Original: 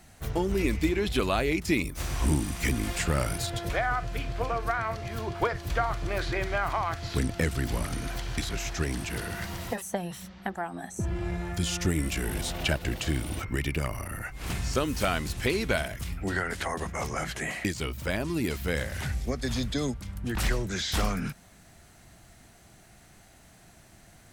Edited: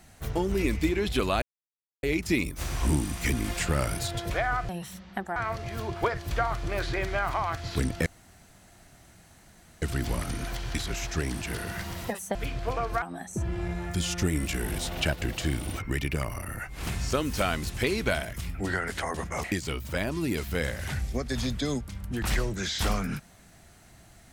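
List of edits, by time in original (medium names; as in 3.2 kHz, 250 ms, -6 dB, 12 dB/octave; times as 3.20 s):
1.42 s: insert silence 0.61 s
4.08–4.75 s: swap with 9.98–10.65 s
7.45 s: insert room tone 1.76 s
17.07–17.57 s: delete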